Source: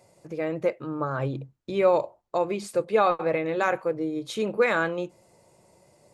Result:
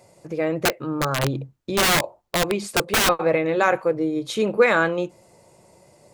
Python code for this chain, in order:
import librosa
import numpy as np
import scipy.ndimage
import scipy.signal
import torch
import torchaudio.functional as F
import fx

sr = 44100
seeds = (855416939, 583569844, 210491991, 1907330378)

y = fx.overflow_wrap(x, sr, gain_db=19.0, at=(0.65, 3.09))
y = y * 10.0 ** (5.5 / 20.0)